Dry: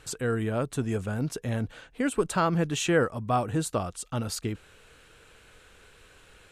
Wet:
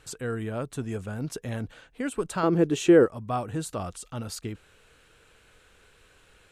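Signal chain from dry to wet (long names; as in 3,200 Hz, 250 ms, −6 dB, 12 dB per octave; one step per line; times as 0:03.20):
0:01.24–0:01.74: harmonic and percussive parts rebalanced percussive +3 dB
0:02.43–0:03.06: parametric band 370 Hz +14.5 dB 1.1 octaves
0:03.63–0:04.21: transient designer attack −2 dB, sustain +6 dB
level −3.5 dB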